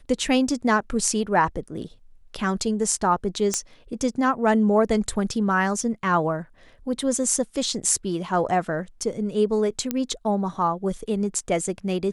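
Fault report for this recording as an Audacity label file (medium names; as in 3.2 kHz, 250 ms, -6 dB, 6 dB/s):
3.540000	3.540000	pop -9 dBFS
9.910000	9.910000	pop -10 dBFS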